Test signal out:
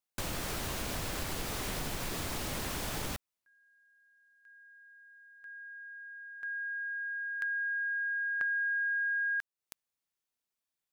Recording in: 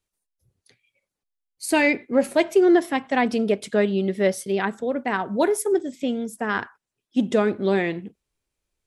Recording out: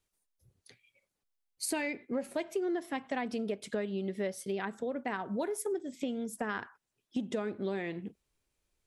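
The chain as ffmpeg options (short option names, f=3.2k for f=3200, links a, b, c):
-af "acompressor=threshold=-33dB:ratio=5"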